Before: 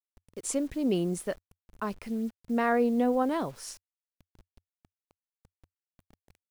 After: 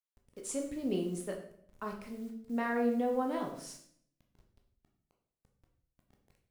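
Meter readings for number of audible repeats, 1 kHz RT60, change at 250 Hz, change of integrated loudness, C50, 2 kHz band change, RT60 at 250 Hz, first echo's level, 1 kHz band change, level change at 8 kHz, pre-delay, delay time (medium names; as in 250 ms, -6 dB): no echo, 0.60 s, -6.0 dB, -6.0 dB, 7.0 dB, -5.0 dB, 0.85 s, no echo, -6.0 dB, -6.0 dB, 11 ms, no echo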